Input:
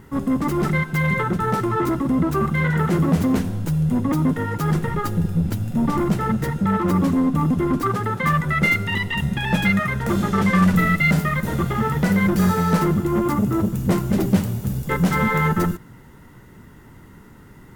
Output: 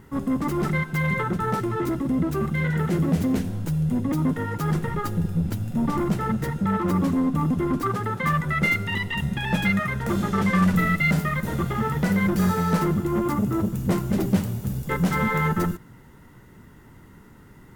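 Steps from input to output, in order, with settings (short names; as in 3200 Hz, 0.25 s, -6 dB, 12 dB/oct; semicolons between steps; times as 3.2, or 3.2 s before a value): 1.59–4.18 dynamic EQ 1100 Hz, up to -6 dB, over -39 dBFS, Q 1.6; gain -3.5 dB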